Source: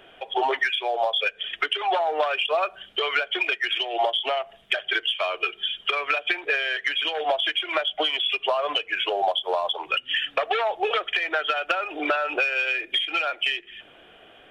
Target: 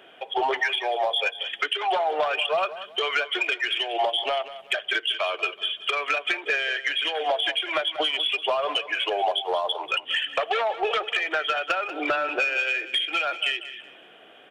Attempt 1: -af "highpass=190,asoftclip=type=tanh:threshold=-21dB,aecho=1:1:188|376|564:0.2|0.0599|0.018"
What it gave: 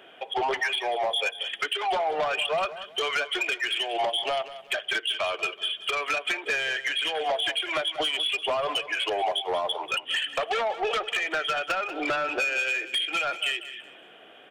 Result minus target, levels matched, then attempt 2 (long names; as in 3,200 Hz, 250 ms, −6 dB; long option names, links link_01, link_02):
soft clipping: distortion +10 dB
-af "highpass=190,asoftclip=type=tanh:threshold=-13.5dB,aecho=1:1:188|376|564:0.2|0.0599|0.018"